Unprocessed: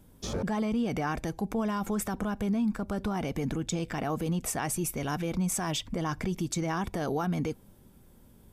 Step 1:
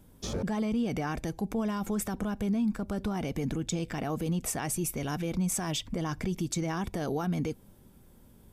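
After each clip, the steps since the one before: dynamic EQ 1100 Hz, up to -4 dB, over -43 dBFS, Q 0.8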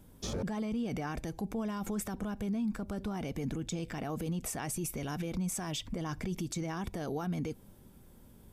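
limiter -27.5 dBFS, peak gain reduction 7 dB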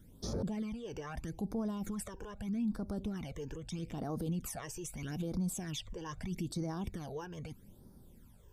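phaser stages 12, 0.79 Hz, lowest notch 210–2800 Hz; gain -1.5 dB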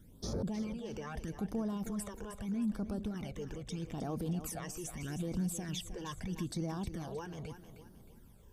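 thinning echo 0.312 s, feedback 36%, high-pass 160 Hz, level -10 dB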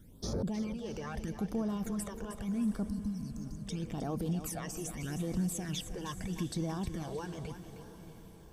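spectral delete 2.89–3.64, 310–4000 Hz; diffused feedback echo 0.69 s, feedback 47%, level -14 dB; gain +2 dB

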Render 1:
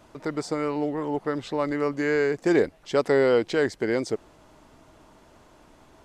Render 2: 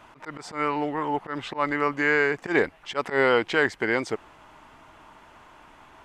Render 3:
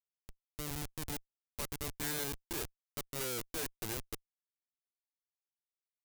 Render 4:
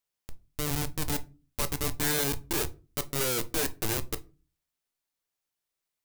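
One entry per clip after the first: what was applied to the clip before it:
band shelf 1600 Hz +10 dB 2.3 oct; auto swell 0.101 s; gain -2 dB
Schmitt trigger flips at -22 dBFS; pre-emphasis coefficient 0.8
reverb RT60 0.35 s, pre-delay 7 ms, DRR 10.5 dB; gain +9 dB

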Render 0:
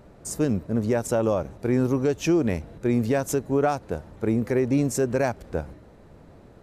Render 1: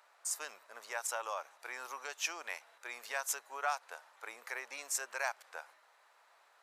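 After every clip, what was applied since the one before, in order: HPF 930 Hz 24 dB/oct; gain -3 dB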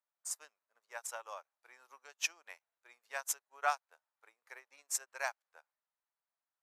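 upward expander 2.5:1, over -55 dBFS; gain +4 dB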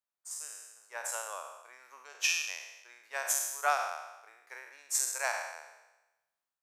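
spectral trails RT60 1.05 s; AGC gain up to 8.5 dB; gain -6.5 dB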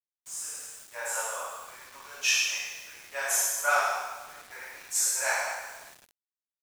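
chorus voices 2, 1.1 Hz, delay 28 ms, depth 3 ms; two-slope reverb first 0.76 s, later 2.7 s, from -21 dB, DRR -7.5 dB; bit-crush 8-bit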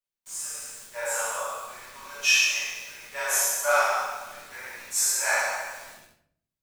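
shoebox room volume 95 m³, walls mixed, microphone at 1.2 m; gain -1 dB

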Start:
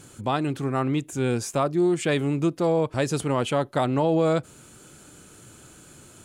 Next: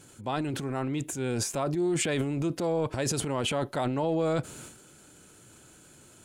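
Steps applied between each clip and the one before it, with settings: low shelf 190 Hz -3 dB; notch 1200 Hz, Q 15; transient shaper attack -1 dB, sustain +11 dB; gain -5.5 dB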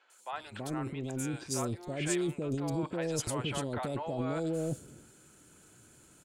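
three bands offset in time mids, highs, lows 0.1/0.33 s, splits 620/3500 Hz; gain -4 dB

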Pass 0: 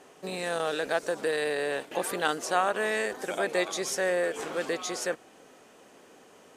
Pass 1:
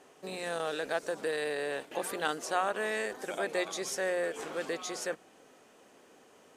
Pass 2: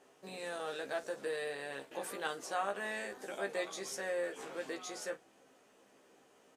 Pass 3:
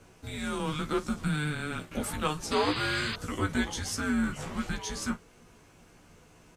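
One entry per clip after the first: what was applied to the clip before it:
notches 60/120/180 Hz; gain -4.5 dB
early reflections 15 ms -4 dB, 51 ms -16.5 dB; gain -7.5 dB
frequency shift -300 Hz; painted sound noise, 2.51–3.16, 970–5000 Hz -44 dBFS; gain +8.5 dB

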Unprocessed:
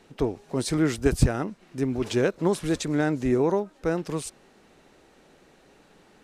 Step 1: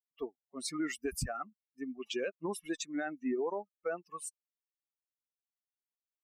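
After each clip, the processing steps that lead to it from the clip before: per-bin expansion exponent 3; low shelf 290 Hz -11 dB; limiter -29 dBFS, peak gain reduction 10.5 dB; gain +2.5 dB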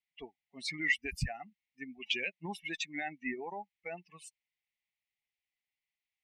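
EQ curve 180 Hz 0 dB, 260 Hz -10 dB, 560 Hz -15 dB, 810 Hz +1 dB, 1300 Hz -25 dB, 2000 Hz +13 dB, 9700 Hz -16 dB; gain +3.5 dB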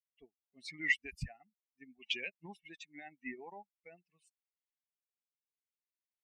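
rotary speaker horn 0.8 Hz; upward expander 1.5:1, over -56 dBFS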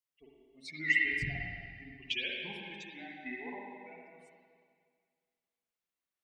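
reverb RT60 2.0 s, pre-delay 45 ms, DRR -3.5 dB

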